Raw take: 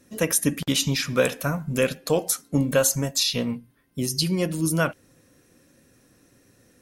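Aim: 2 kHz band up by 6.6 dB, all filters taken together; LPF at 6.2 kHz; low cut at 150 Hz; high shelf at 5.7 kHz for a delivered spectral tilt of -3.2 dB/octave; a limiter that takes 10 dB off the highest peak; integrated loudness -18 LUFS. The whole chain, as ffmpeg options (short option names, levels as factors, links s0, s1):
-af "highpass=150,lowpass=6200,equalizer=f=2000:t=o:g=8,highshelf=f=5700:g=9,volume=2.51,alimiter=limit=0.501:level=0:latency=1"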